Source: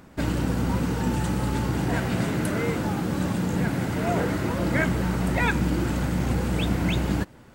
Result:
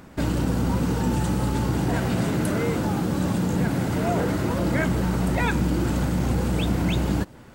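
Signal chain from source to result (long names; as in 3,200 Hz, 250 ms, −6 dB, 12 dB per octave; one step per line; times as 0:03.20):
dynamic equaliser 2,000 Hz, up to −4 dB, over −45 dBFS, Q 1.2
in parallel at +1 dB: brickwall limiter −20.5 dBFS, peak gain reduction 8.5 dB
on the sum: level −3 dB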